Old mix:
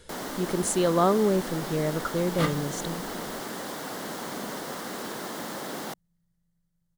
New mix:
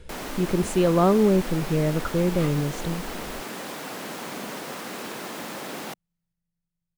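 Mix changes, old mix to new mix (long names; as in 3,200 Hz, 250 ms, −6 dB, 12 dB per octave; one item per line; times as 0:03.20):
speech: add spectral tilt −2.5 dB per octave
second sound −9.5 dB
master: add parametric band 2,500 Hz +10 dB 0.34 octaves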